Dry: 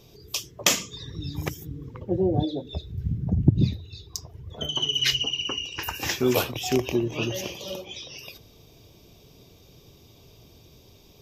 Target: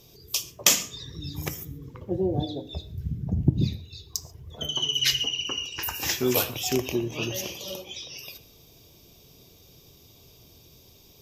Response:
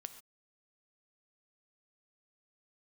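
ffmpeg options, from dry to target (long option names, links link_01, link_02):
-filter_complex "[0:a]aemphasis=mode=production:type=cd,bandreject=frequency=104:width_type=h:width=4,bandreject=frequency=208:width_type=h:width=4,bandreject=frequency=312:width_type=h:width=4,bandreject=frequency=416:width_type=h:width=4,bandreject=frequency=520:width_type=h:width=4,bandreject=frequency=624:width_type=h:width=4,bandreject=frequency=728:width_type=h:width=4,bandreject=frequency=832:width_type=h:width=4,bandreject=frequency=936:width_type=h:width=4,bandreject=frequency=1040:width_type=h:width=4,bandreject=frequency=1144:width_type=h:width=4,bandreject=frequency=1248:width_type=h:width=4,bandreject=frequency=1352:width_type=h:width=4,bandreject=frequency=1456:width_type=h:width=4,bandreject=frequency=1560:width_type=h:width=4,bandreject=frequency=1664:width_type=h:width=4,bandreject=frequency=1768:width_type=h:width=4,bandreject=frequency=1872:width_type=h:width=4,bandreject=frequency=1976:width_type=h:width=4,bandreject=frequency=2080:width_type=h:width=4,bandreject=frequency=2184:width_type=h:width=4,bandreject=frequency=2288:width_type=h:width=4,bandreject=frequency=2392:width_type=h:width=4,bandreject=frequency=2496:width_type=h:width=4,bandreject=frequency=2600:width_type=h:width=4,bandreject=frequency=2704:width_type=h:width=4,bandreject=frequency=2808:width_type=h:width=4,bandreject=frequency=2912:width_type=h:width=4,bandreject=frequency=3016:width_type=h:width=4,asplit=2[link_01][link_02];[1:a]atrim=start_sample=2205[link_03];[link_02][link_03]afir=irnorm=-1:irlink=0,volume=1.5dB[link_04];[link_01][link_04]amix=inputs=2:normalize=0,volume=-7dB"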